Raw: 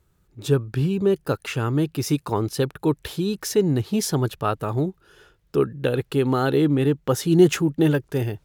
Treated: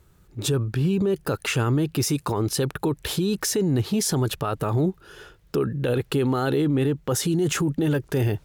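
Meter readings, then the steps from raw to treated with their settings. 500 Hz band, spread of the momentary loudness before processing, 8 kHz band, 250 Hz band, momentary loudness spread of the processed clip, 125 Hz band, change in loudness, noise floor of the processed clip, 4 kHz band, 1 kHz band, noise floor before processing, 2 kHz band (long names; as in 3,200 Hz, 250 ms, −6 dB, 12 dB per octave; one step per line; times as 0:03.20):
−3.0 dB, 7 LU, +4.0 dB, −2.0 dB, 4 LU, −0.5 dB, −1.5 dB, −57 dBFS, +2.0 dB, −2.0 dB, −64 dBFS, 0.0 dB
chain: dynamic equaliser 8,300 Hz, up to +5 dB, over −44 dBFS, Q 1.2
brickwall limiter −23 dBFS, peak gain reduction 18.5 dB
level +7.5 dB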